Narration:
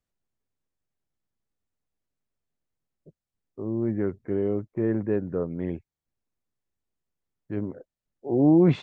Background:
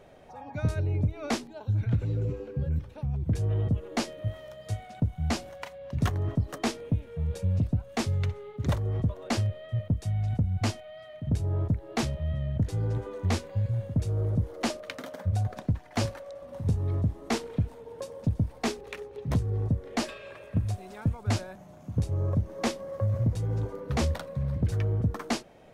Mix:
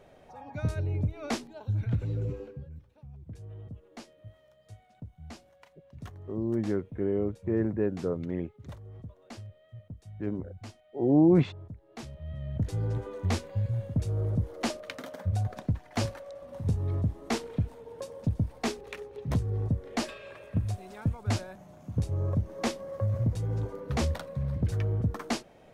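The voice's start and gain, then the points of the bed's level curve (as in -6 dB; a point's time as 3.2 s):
2.70 s, -2.5 dB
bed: 2.45 s -2.5 dB
2.68 s -17 dB
11.86 s -17 dB
12.68 s -1.5 dB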